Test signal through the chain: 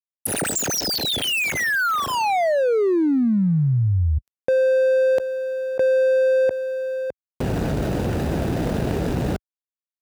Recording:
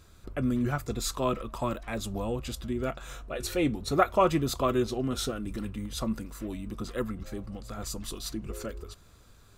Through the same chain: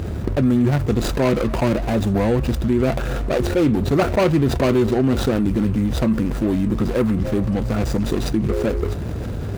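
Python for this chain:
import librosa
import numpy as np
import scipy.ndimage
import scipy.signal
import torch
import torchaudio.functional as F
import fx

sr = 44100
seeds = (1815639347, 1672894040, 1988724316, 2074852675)

y = scipy.ndimage.median_filter(x, 41, mode='constant')
y = scipy.signal.sosfilt(scipy.signal.butter(2, 68.0, 'highpass', fs=sr, output='sos'), y)
y = fx.env_flatten(y, sr, amount_pct=70)
y = F.gain(torch.from_numpy(y), 8.5).numpy()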